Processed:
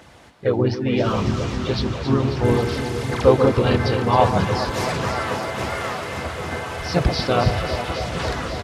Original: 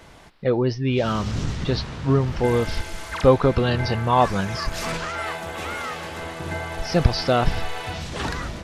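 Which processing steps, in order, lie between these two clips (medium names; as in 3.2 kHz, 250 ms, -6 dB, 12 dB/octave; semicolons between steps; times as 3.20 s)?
high-pass 55 Hz 24 dB/octave; echo whose repeats swap between lows and highs 135 ms, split 1.1 kHz, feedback 90%, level -7.5 dB; phaser 1.6 Hz, delay 4.2 ms, feedback 30%; harmony voices -3 st -5 dB; trim -1 dB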